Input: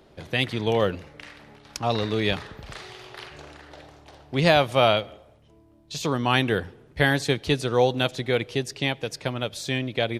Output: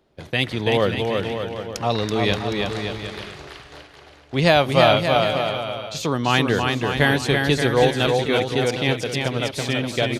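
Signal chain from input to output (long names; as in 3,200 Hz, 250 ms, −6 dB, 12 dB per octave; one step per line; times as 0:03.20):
noise gate −43 dBFS, range −12 dB
bouncing-ball delay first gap 330 ms, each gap 0.75×, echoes 5
level +2.5 dB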